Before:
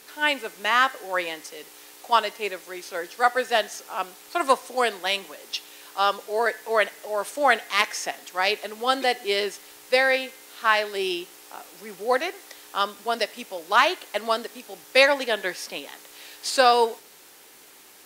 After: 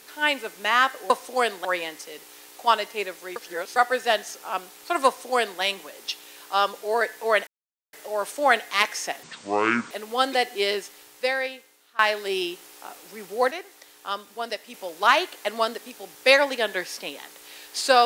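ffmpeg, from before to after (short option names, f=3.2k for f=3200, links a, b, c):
-filter_complex "[0:a]asplit=11[a][b][c][d][e][f][g][h][i][j][k];[a]atrim=end=1.102[l];[b]atrim=start=4.508:end=5.062[m];[c]atrim=start=1.098:end=2.812[n];[d]atrim=start=2.808:end=3.212,asetpts=PTS-STARTPTS,areverse[o];[e]atrim=start=3.208:end=6.92,asetpts=PTS-STARTPTS,afade=t=out:st=3.708:d=0.004:c=hsin,apad=pad_dur=0.46[p];[f]atrim=start=6.92:end=8.224,asetpts=PTS-STARTPTS,afade=t=in:d=0.004:c=hsin[q];[g]atrim=start=8.22:end=8.6,asetpts=PTS-STARTPTS,asetrate=24696,aresample=44100[r];[h]atrim=start=8.596:end=10.68,asetpts=PTS-STARTPTS,afade=t=out:st=0.774:d=1.31:silence=0.0707946[s];[i]atrim=start=10.68:end=12.202,asetpts=PTS-STARTPTS,afade=t=in:d=0.004:c=hsin:silence=0.0707946[t];[j]atrim=start=12.198:end=13.432,asetpts=PTS-STARTPTS,volume=-5.5dB[u];[k]atrim=start=13.428[v];[l][m]acrossfade=d=0.004:c1=hsin:c2=hsin[w];[w][n]acrossfade=d=0.004:c1=hsin:c2=hsin[x];[x][o]acrossfade=d=0.004:c1=hsin:c2=hsin[y];[p][q]concat=n=2:v=0:a=1[z];[y][z]acrossfade=d=0.004:c1=hsin:c2=hsin[aa];[aa][r]acrossfade=d=0.004:c1=hsin:c2=hsin[ab];[s][t]concat=n=2:v=0:a=1[ac];[ab][ac]acrossfade=d=0.004:c1=hsin:c2=hsin[ad];[ad][u]acrossfade=d=0.004:c1=hsin:c2=hsin[ae];[ae][v]acrossfade=d=0.004:c1=hsin:c2=hsin"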